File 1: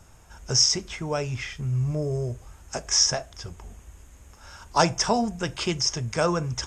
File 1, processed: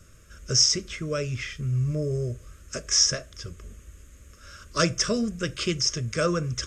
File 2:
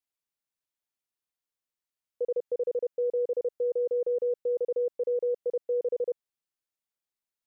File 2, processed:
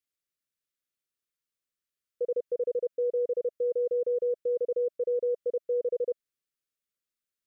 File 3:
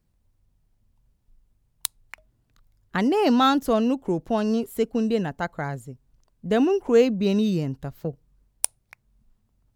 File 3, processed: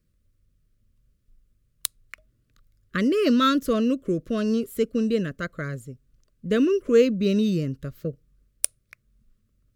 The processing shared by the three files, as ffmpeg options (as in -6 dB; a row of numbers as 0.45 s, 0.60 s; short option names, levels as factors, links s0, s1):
-af "asuperstop=centerf=830:order=8:qfactor=1.7"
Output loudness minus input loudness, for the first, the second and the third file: -0.5 LU, 0.0 LU, -0.5 LU